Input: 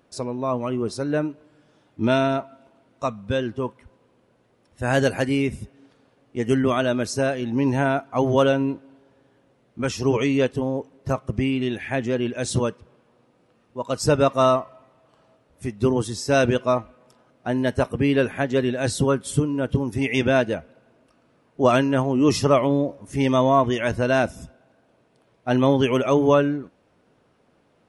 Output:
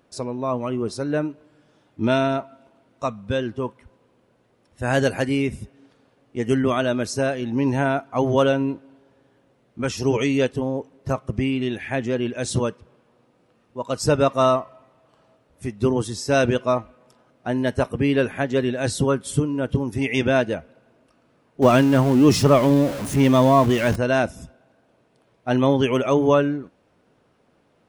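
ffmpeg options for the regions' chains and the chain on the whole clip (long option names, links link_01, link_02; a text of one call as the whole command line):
ffmpeg -i in.wav -filter_complex "[0:a]asettb=1/sr,asplit=3[link_01][link_02][link_03];[link_01]atrim=end=9.974[link_04];[link_02]atrim=start=9.97:end=10.5,asetpts=PTS-STARTPTS,afade=type=in:duration=0.004:curve=qsin,afade=type=out:start_time=0.526:duration=0.004:curve=qsin,highshelf=frequency=5200:gain=6.5,bandreject=frequency=1100:width=9.6[link_05];[link_03]atrim=start=10.496[link_06];[link_04][link_05]acrossfade=duration=0.004:curve1=hsin:curve2=qsin[link_07];[link_07][link_06]acrossfade=duration=0.004:curve1=qsin:curve2=hsin,asettb=1/sr,asplit=3[link_08][link_09][link_10];[link_08]atrim=end=21.624[link_11];[link_09]atrim=start=21.62:end=23.96,asetpts=PTS-STARTPTS,afade=type=in:duration=0.004:curve=qsin,afade=type=out:start_time=2.336:duration=0.004:curve=qsin,aeval=exprs='val(0)+0.5*0.0473*sgn(val(0))':channel_layout=same,equalizer=frequency=170:width_type=o:width=1.8:gain=4.5,acrusher=bits=7:mix=0:aa=0.5[link_12];[link_10]atrim=start=23.956[link_13];[link_11][link_12]acrossfade=duration=0.004:curve1=hsin:curve2=qsin[link_14];[link_14][link_13]acrossfade=duration=0.004:curve1=qsin:curve2=hsin" out.wav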